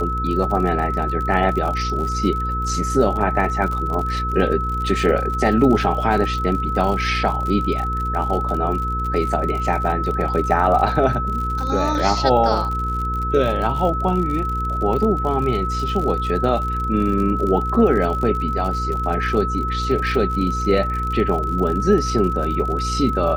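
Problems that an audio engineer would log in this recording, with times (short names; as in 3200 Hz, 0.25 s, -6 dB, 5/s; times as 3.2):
crackle 57/s -26 dBFS
hum 60 Hz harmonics 8 -25 dBFS
tone 1300 Hz -23 dBFS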